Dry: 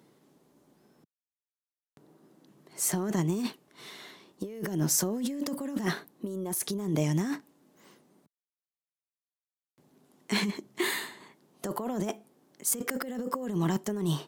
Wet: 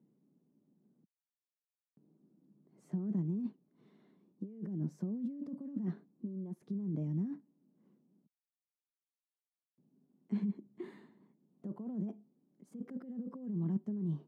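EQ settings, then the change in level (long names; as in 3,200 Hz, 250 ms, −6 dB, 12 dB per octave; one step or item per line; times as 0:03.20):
resonant band-pass 200 Hz, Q 2.5
−3.0 dB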